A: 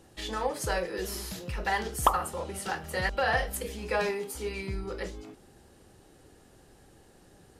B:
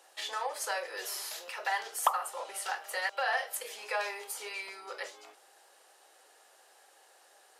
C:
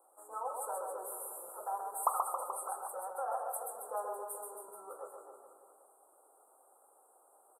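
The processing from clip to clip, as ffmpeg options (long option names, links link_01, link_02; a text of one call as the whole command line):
ffmpeg -i in.wav -filter_complex "[0:a]highpass=frequency=610:width=0.5412,highpass=frequency=610:width=1.3066,asplit=2[link_01][link_02];[link_02]acompressor=threshold=-38dB:ratio=6,volume=2dB[link_03];[link_01][link_03]amix=inputs=2:normalize=0,volume=-5dB" out.wav
ffmpeg -i in.wav -filter_complex "[0:a]asuperstop=centerf=3400:order=20:qfactor=0.51,asplit=2[link_01][link_02];[link_02]aecho=0:1:130|273|430.3|603.3|793.7:0.631|0.398|0.251|0.158|0.1[link_03];[link_01][link_03]amix=inputs=2:normalize=0,volume=-4dB" out.wav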